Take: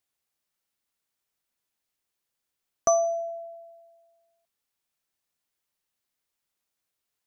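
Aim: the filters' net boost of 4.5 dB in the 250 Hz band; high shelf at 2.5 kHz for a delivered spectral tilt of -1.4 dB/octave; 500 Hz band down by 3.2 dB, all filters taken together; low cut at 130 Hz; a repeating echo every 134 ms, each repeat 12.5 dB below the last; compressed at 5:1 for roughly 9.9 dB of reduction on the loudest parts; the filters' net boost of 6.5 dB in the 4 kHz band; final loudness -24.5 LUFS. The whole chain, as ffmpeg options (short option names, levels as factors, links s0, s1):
-af "highpass=130,equalizer=f=250:t=o:g=8.5,equalizer=f=500:t=o:g=-7.5,highshelf=f=2500:g=3.5,equalizer=f=4000:t=o:g=6,acompressor=threshold=0.0398:ratio=5,aecho=1:1:134|268|402:0.237|0.0569|0.0137,volume=2.99"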